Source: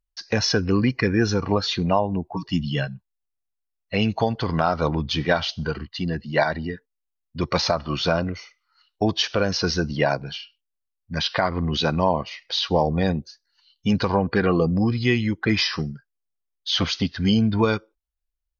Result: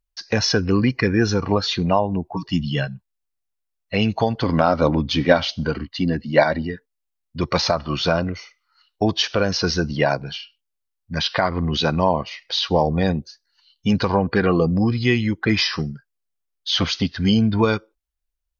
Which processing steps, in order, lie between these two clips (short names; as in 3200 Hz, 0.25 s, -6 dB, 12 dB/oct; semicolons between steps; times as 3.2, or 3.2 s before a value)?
4.43–6.62 small resonant body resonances 270/550/2200 Hz, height 9 dB; gain +2 dB